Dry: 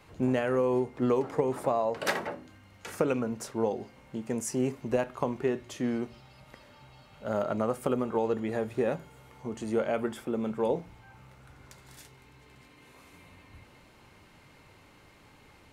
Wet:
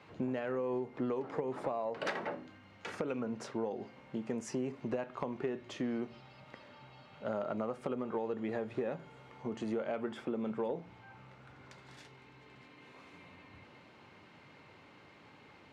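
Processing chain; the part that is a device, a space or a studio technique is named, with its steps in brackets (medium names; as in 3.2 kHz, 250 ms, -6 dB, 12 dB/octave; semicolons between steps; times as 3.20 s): AM radio (band-pass 130–4100 Hz; compression, threshold -32 dBFS, peak gain reduction 11 dB; saturation -21.5 dBFS, distortion -25 dB)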